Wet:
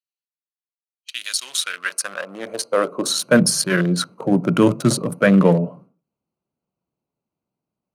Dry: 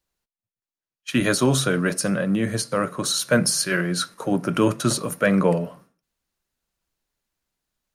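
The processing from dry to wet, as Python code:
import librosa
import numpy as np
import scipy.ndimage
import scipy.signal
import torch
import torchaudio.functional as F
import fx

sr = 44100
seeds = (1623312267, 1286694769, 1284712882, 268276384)

y = fx.wiener(x, sr, points=25)
y = fx.filter_sweep_highpass(y, sr, from_hz=3600.0, to_hz=140.0, start_s=1.33, end_s=3.53, q=1.3)
y = F.gain(torch.from_numpy(y), 4.0).numpy()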